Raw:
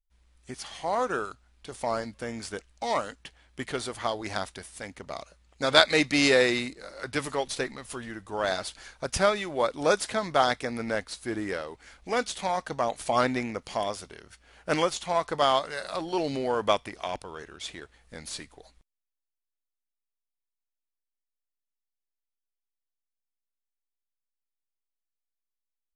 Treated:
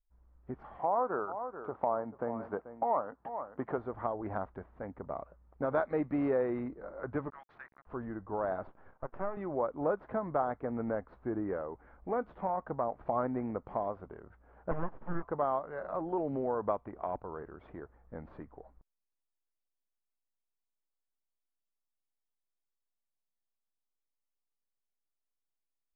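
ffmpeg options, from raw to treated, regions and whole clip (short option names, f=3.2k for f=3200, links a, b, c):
-filter_complex "[0:a]asettb=1/sr,asplit=3[a][b][c];[a]atrim=end=0.794[d];[b]atrim=start=0.79:end=3.78,asetpts=PTS-STARTPTS,afade=t=in:d=0.004:c=qsin,afade=t=out:st=2.986:d=0.004:c=qsin,highpass=120,lowpass=7.3k,equalizer=f=880:w=0.84:g=7.5,aecho=1:1:436:0.158,atrim=end_sample=131859[e];[c]atrim=start=3.776[f];[d][e]acrossfade=d=0.004:c1=hsin:c2=qsin[g];[g][f]acrossfade=d=0.004:c1=qsin:c2=hsin,asettb=1/sr,asplit=3[h][i][j];[h]atrim=end=7.304[k];[i]atrim=start=7.3:end=7.87,asetpts=PTS-STARTPTS,afade=t=in:d=0.004:c=qsin,afade=t=out:st=0.566:d=0.004:c=qsin,highpass=f=1.5k:w=0.5412,highpass=f=1.5k:w=1.3066,aeval=exprs='val(0)*gte(abs(val(0)),0.0075)':c=same[l];[j]atrim=start=7.866[m];[k][l]acrossfade=d=0.004:c1=hsin:c2=qsin[n];[n][m]acrossfade=d=0.004:c1=qsin:c2=hsin,asettb=1/sr,asplit=3[o][p][q];[o]atrim=end=8.674[r];[p]atrim=start=8.67:end=9.37,asetpts=PTS-STARTPTS,afade=t=in:d=0.004:c=qsin,afade=t=out:st=0.696:d=0.004:c=qsin,acompressor=threshold=-29dB:ratio=1.5:attack=3.2:release=140:knee=1:detection=peak,highpass=300,lowpass=4.4k,aeval=exprs='max(val(0),0)':c=same[s];[q]atrim=start=9.366[t];[r][s]acrossfade=d=0.004:c1=hsin:c2=qsin[u];[u][t]acrossfade=d=0.004:c1=qsin:c2=hsin,asettb=1/sr,asplit=3[v][w][x];[v]atrim=end=14.714[y];[w]atrim=start=14.71:end=15.23,asetpts=PTS-STARTPTS,afade=t=in:d=0.004:c=qsin,afade=t=out:st=0.516:d=0.004:c=qsin,acrossover=split=3800[z][aa];[aa]acompressor=threshold=-46dB:ratio=4:attack=1:release=60[ab];[z][ab]amix=inputs=2:normalize=0,aeval=exprs='abs(val(0))':c=same[ac];[x]atrim=start=15.226[ad];[y][ac]acrossfade=d=0.004:c1=hsin:c2=qsin[ae];[ae][ad]acrossfade=d=0.004:c1=qsin:c2=hsin,lowpass=f=1.2k:w=0.5412,lowpass=f=1.2k:w=1.3066,acompressor=threshold=-33dB:ratio=2"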